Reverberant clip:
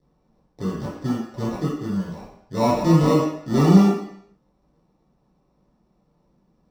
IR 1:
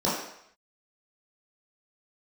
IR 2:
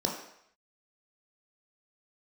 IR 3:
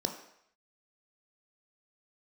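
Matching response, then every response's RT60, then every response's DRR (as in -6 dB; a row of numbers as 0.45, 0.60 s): 1; 0.70, 0.70, 0.70 s; -9.5, -1.0, 3.5 dB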